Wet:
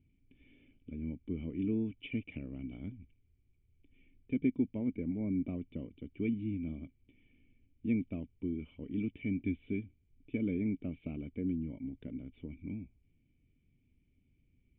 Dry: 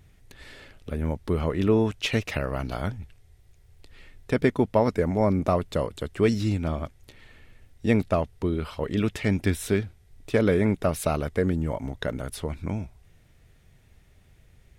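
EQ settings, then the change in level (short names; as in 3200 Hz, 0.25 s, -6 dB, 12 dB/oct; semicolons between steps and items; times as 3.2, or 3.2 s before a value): vocal tract filter i; air absorption 230 m; bell 2400 Hz +7 dB 0.25 oct; -3.0 dB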